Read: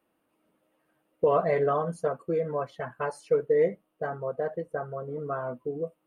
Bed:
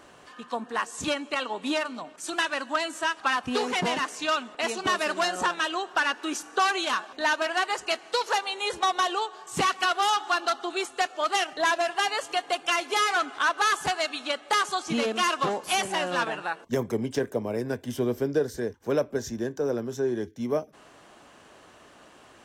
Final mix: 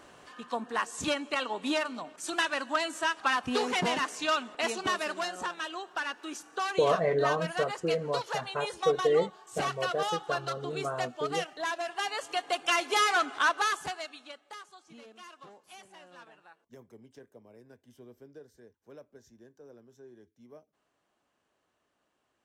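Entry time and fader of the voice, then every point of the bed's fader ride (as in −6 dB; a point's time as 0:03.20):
5.55 s, −2.0 dB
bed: 0:04.67 −2 dB
0:05.36 −9 dB
0:11.78 −9 dB
0:12.75 −1 dB
0:13.46 −1 dB
0:14.72 −25 dB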